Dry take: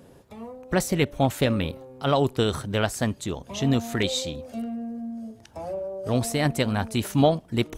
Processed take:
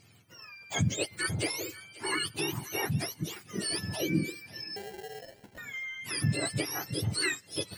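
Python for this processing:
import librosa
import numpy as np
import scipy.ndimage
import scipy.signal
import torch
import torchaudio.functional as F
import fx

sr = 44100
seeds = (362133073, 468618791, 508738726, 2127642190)

y = fx.octave_mirror(x, sr, pivot_hz=1100.0)
y = fx.sample_hold(y, sr, seeds[0], rate_hz=1200.0, jitter_pct=0, at=(4.76, 5.58))
y = fx.echo_thinned(y, sr, ms=535, feedback_pct=30, hz=700.0, wet_db=-18.0)
y = y * 10.0 ** (-5.5 / 20.0)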